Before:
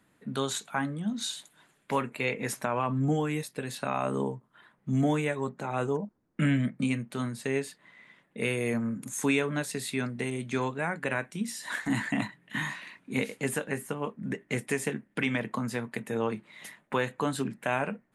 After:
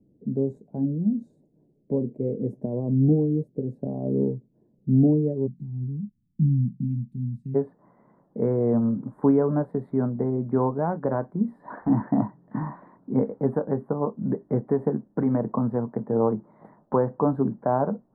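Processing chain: inverse Chebyshev low-pass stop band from 1200 Hz, stop band 50 dB, from 5.46 s stop band from 510 Hz, from 7.54 s stop band from 2500 Hz; gain +8 dB

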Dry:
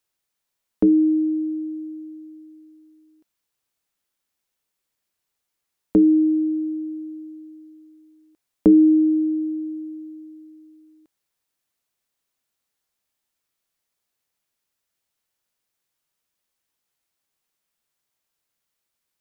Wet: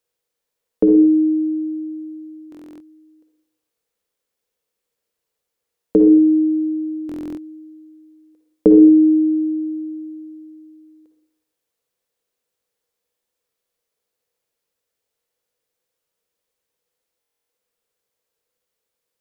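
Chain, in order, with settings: bell 480 Hz +15 dB 0.44 oct; reverb RT60 0.60 s, pre-delay 46 ms, DRR 6 dB; stuck buffer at 2.5/7.07/17.19, samples 1024, times 12; gain -1.5 dB

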